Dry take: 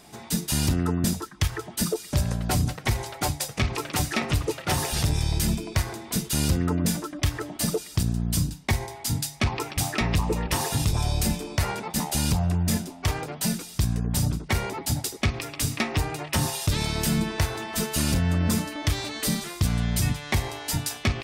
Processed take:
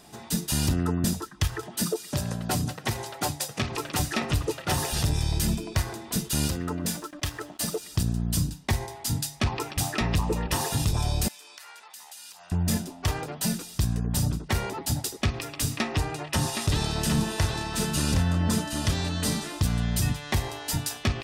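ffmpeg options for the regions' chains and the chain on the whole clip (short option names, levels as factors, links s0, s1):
-filter_complex "[0:a]asettb=1/sr,asplit=3[s0][s1][s2];[s0]atrim=end=1.634[s3];[s1]atrim=start=1.63:end=3.74,asetpts=PTS-STARTPTS,afade=t=in:d=0.004:c=qsin,afade=t=out:st=2.106:d=0.004:c=qsin,highpass=120,acompressor=mode=upward:threshold=0.0158:ratio=2.5:attack=3.2:release=140:knee=2.83:detection=peak[s4];[s2]atrim=start=3.736[s5];[s3][s4]acrossfade=d=0.004:c1=hsin:c2=qsin[s6];[s6][s5]acrossfade=d=0.004:c1=qsin:c2=hsin,asettb=1/sr,asplit=3[s7][s8][s9];[s7]atrim=end=6.474[s10];[s8]atrim=start=6.47:end=7.83,asetpts=PTS-STARTPTS,afade=t=in:d=0.004:c=qsin,afade=t=out:st=1.356:d=0.004:c=qsin,lowshelf=f=300:g=-7.5,aeval=exprs='sgn(val(0))*max(abs(val(0))-0.00299,0)':c=same[s11];[s9]atrim=start=7.826[s12];[s10][s11]acrossfade=d=0.004:c1=hsin:c2=qsin[s13];[s13][s12]acrossfade=d=0.004:c1=qsin:c2=hsin,asettb=1/sr,asplit=3[s14][s15][s16];[s14]atrim=end=11.284[s17];[s15]atrim=start=11.28:end=12.52,asetpts=PTS-STARTPTS,afade=t=in:d=0.004:c=qsin,afade=t=out:st=1.236:d=0.004:c=qsin,highpass=1400,acompressor=threshold=0.00708:ratio=4:attack=3.2:release=140:knee=1:detection=peak[s18];[s16]atrim=start=12.516[s19];[s17][s18]acrossfade=d=0.004:c1=hsin:c2=qsin[s20];[s20][s19]acrossfade=d=0.004:c1=qsin:c2=hsin,asettb=1/sr,asplit=3[s21][s22][s23];[s21]atrim=end=15.784[s24];[s22]atrim=start=15.78:end=19.63,asetpts=PTS-STARTPTS,afade=t=in:d=0.004:c=qsin,afade=t=out:st=3.846:d=0.004:c=qsin,lowpass=11000,aecho=1:1:767:0.501,atrim=end_sample=169785[s25];[s23]atrim=start=19.626[s26];[s24][s25]acrossfade=d=0.004:c1=hsin:c2=qsin[s27];[s27][s26]acrossfade=d=0.004:c1=qsin:c2=hsin,bandreject=f=2200:w=11,acontrast=50,volume=0.447"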